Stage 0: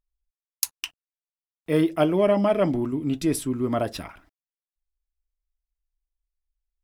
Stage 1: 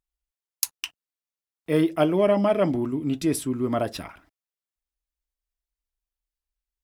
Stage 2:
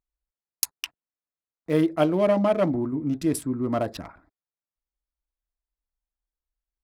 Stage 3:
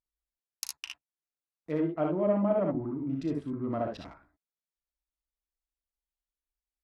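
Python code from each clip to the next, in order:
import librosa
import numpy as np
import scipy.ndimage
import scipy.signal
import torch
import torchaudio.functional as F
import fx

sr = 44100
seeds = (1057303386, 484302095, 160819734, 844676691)

y1 = fx.highpass(x, sr, hz=59.0, slope=6)
y2 = fx.wiener(y1, sr, points=15)
y2 = fx.notch(y2, sr, hz=400.0, q=12.0)
y3 = fx.env_lowpass_down(y2, sr, base_hz=1300.0, full_db=-19.5)
y3 = fx.room_early_taps(y3, sr, ms=(36, 60, 74), db=(-11.5, -3.5, -6.5))
y3 = F.gain(torch.from_numpy(y3), -8.5).numpy()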